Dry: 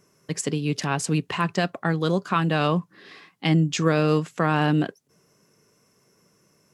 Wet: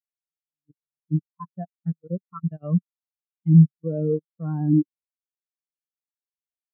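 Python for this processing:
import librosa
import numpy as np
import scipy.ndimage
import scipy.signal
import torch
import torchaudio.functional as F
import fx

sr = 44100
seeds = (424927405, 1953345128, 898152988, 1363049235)

y = fx.level_steps(x, sr, step_db=22)
y = fx.spectral_expand(y, sr, expansion=4.0)
y = y * 10.0 ** (4.0 / 20.0)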